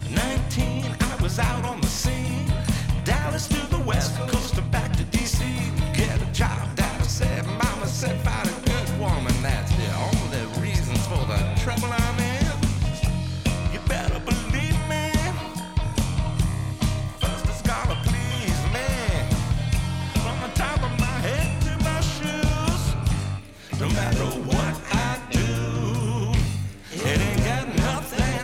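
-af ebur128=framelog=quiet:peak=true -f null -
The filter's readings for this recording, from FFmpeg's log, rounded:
Integrated loudness:
  I:         -24.7 LUFS
  Threshold: -34.7 LUFS
Loudness range:
  LRA:         1.1 LU
  Threshold: -44.7 LUFS
  LRA low:   -25.3 LUFS
  LRA high:  -24.3 LUFS
True peak:
  Peak:      -11.8 dBFS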